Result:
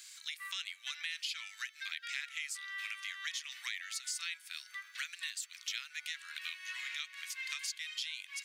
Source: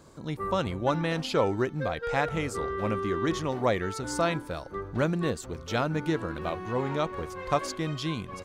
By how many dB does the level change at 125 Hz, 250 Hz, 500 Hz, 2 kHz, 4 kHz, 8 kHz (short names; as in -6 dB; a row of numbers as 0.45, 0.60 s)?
under -40 dB, under -40 dB, under -40 dB, -3.5 dB, +0.5 dB, +1.0 dB